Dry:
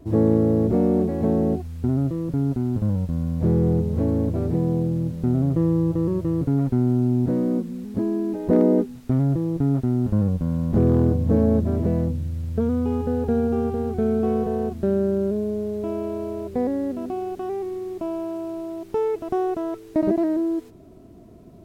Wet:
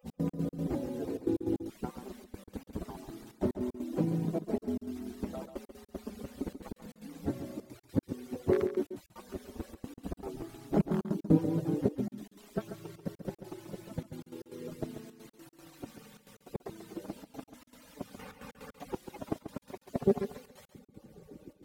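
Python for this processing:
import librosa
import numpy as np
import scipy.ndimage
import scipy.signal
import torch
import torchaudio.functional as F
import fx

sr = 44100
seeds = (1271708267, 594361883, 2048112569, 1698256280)

y = fx.hpss_only(x, sr, part='percussive')
y = fx.highpass(y, sr, hz=140.0, slope=6)
y = fx.step_gate(y, sr, bpm=154, pattern='x.x.x.xxxxx', floor_db=-60.0, edge_ms=4.5)
y = y + 10.0 ** (-10.0 / 20.0) * np.pad(y, (int(138 * sr / 1000.0), 0))[:len(y)]
y = fx.band_squash(y, sr, depth_pct=70, at=(18.19, 19.27))
y = F.gain(torch.from_numpy(y), 3.5).numpy()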